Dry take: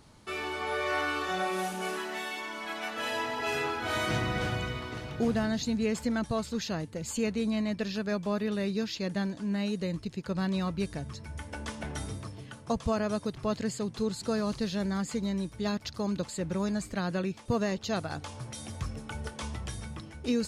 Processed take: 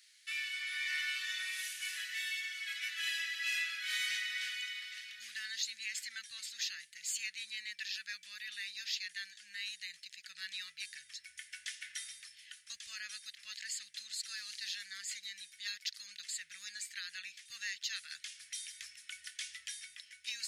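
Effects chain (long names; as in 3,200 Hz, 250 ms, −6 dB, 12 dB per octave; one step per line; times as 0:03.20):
elliptic high-pass filter 1,800 Hz, stop band 50 dB
in parallel at −7 dB: soft clipping −32.5 dBFS, distortion −17 dB
on the sum: level −1.5 dB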